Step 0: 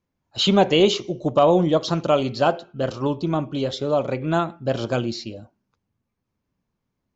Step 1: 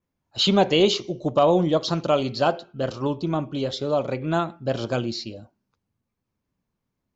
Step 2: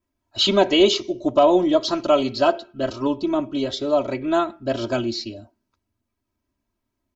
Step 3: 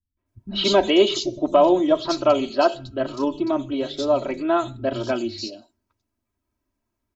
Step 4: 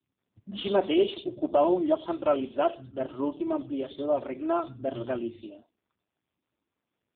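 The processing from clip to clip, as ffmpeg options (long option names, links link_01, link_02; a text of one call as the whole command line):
ffmpeg -i in.wav -af "adynamicequalizer=threshold=0.00891:dfrequency=4500:dqfactor=2.5:tfrequency=4500:tqfactor=2.5:attack=5:release=100:ratio=0.375:range=2.5:mode=boostabove:tftype=bell,volume=-2dB" out.wav
ffmpeg -i in.wav -af "aecho=1:1:3.1:0.89" out.wav
ffmpeg -i in.wav -filter_complex "[0:a]acrossover=split=180|3600[link_01][link_02][link_03];[link_02]adelay=170[link_04];[link_03]adelay=260[link_05];[link_01][link_04][link_05]amix=inputs=3:normalize=0" out.wav
ffmpeg -i in.wav -af "volume=-6dB" -ar 8000 -c:a libopencore_amrnb -b:a 5150 out.amr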